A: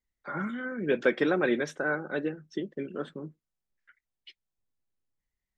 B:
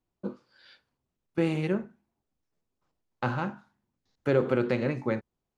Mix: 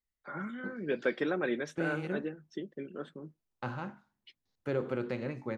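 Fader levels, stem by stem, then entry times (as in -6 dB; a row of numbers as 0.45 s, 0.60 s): -6.0 dB, -8.5 dB; 0.00 s, 0.40 s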